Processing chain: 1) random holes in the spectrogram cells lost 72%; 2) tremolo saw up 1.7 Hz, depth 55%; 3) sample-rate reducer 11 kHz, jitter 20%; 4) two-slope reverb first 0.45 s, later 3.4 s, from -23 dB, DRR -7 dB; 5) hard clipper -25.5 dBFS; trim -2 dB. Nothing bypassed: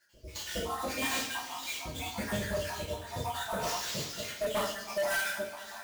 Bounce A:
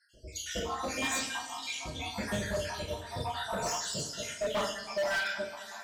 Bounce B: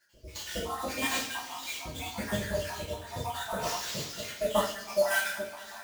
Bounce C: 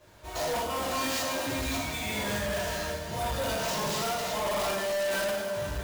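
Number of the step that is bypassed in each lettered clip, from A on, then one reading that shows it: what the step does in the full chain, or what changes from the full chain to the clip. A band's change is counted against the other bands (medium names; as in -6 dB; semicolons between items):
3, distortion -2 dB; 5, distortion -9 dB; 1, 2 kHz band -2.5 dB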